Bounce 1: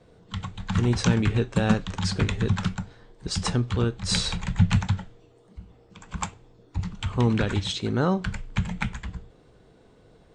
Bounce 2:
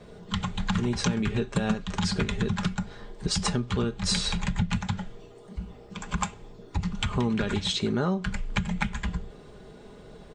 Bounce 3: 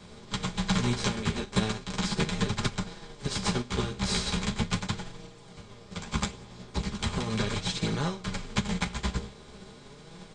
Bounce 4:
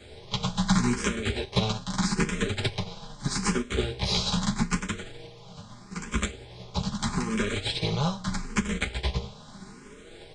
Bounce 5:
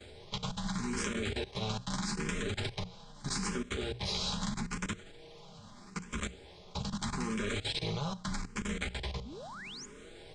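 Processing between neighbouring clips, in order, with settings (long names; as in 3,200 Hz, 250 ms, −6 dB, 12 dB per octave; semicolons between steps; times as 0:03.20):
comb filter 4.9 ms, depth 48%; downward compressor 5 to 1, threshold −32 dBFS, peak gain reduction 17 dB; level +7.5 dB
compressor on every frequency bin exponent 0.4; multi-voice chorus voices 2, 0.38 Hz, delay 11 ms, depth 5 ms; expander for the loud parts 2.5 to 1, over −32 dBFS
frequency shifter mixed with the dry sound +0.79 Hz; level +5 dB
output level in coarse steps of 17 dB; sound drawn into the spectrogram rise, 0:09.25–0:09.86, 210–7,300 Hz −46 dBFS; mains-hum notches 60/120/180 Hz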